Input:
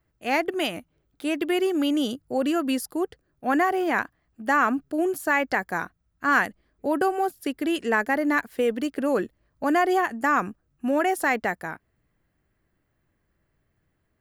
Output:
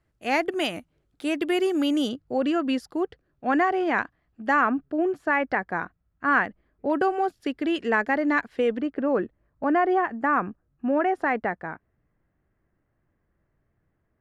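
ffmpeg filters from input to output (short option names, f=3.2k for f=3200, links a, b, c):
-af "asetnsamples=n=441:p=0,asendcmd='2.09 lowpass f 4100;4.61 lowpass f 2300;6.9 lowpass f 4200;8.78 lowpass f 1800',lowpass=9.9k"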